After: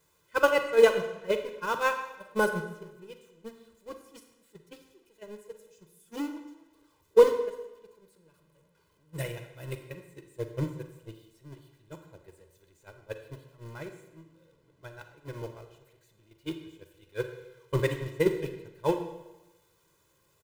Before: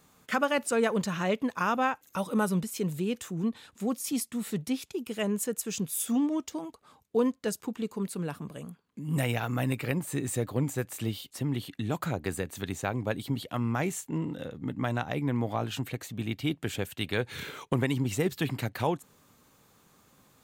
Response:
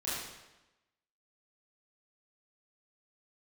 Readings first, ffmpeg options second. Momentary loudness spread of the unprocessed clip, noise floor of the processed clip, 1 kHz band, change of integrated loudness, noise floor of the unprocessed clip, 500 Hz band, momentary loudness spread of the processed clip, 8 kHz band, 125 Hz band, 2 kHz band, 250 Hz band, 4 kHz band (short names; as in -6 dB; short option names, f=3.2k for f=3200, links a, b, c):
8 LU, -69 dBFS, -1.5 dB, +2.5 dB, -64 dBFS, +4.5 dB, 24 LU, -12.5 dB, -8.0 dB, 0.0 dB, -9.5 dB, -4.5 dB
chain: -filter_complex "[0:a]aeval=exprs='val(0)+0.5*0.0316*sgn(val(0))':c=same,agate=range=-40dB:threshold=-22dB:ratio=16:detection=peak,equalizer=f=330:w=2.8:g=7,aecho=1:1:2:0.98,asplit=2[a][b];[1:a]atrim=start_sample=2205,adelay=13[c];[b][c]afir=irnorm=-1:irlink=0,volume=-11.5dB[d];[a][d]amix=inputs=2:normalize=0,volume=3dB"